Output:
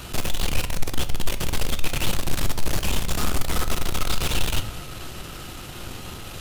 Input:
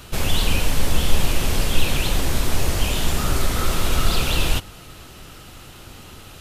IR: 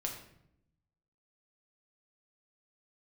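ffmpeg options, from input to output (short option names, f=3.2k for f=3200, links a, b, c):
-filter_complex "[0:a]aeval=exprs='(tanh(28.2*val(0)+0.55)-tanh(0.55))/28.2':c=same,asplit=2[a][b];[1:a]atrim=start_sample=2205[c];[b][c]afir=irnorm=-1:irlink=0,volume=-4dB[d];[a][d]amix=inputs=2:normalize=0,volume=3dB"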